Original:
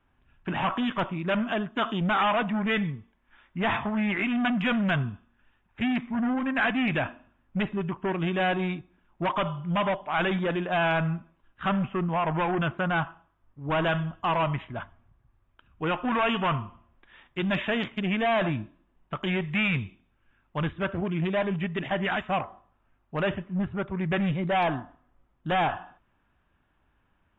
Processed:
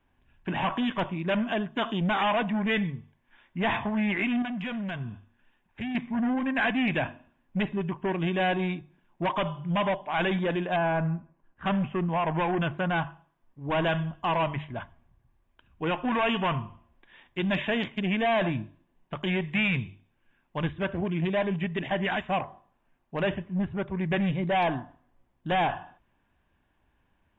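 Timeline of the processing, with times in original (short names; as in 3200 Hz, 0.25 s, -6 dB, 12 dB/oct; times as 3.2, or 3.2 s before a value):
4.42–5.95 compressor 4:1, threshold -32 dBFS
10.76–11.66 LPF 1500 Hz
whole clip: bell 1300 Hz -10.5 dB 0.21 oct; notches 50/100/150 Hz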